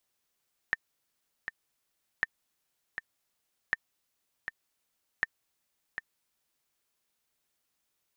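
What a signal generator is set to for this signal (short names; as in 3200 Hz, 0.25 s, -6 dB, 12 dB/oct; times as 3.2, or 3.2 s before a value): metronome 80 bpm, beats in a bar 2, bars 4, 1810 Hz, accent 9 dB -13.5 dBFS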